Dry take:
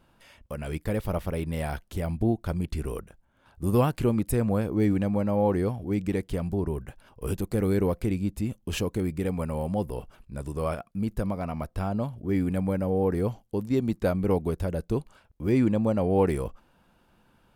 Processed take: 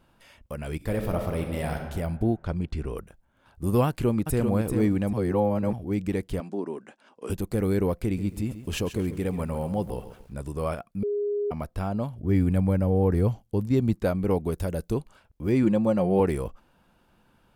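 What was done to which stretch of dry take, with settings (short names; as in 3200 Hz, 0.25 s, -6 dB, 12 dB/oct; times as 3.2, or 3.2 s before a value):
0.76–1.83 reverb throw, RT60 1.5 s, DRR 3.5 dB
2.36–2.97 air absorption 80 m
3.87–4.48 echo throw 0.39 s, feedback 25%, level -5.5 dB
5.13–5.73 reverse
6.4–7.3 elliptic band-pass 230–7900 Hz, stop band 50 dB
8.03–10.34 lo-fi delay 0.136 s, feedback 35%, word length 9-bit, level -12 dB
11.03–11.51 bleep 411 Hz -24 dBFS
12.18–13.94 bell 85 Hz +8.5 dB 1.8 oct
14.52–14.94 high shelf 5100 Hz +8 dB
15.63–16.2 comb 5.6 ms, depth 59%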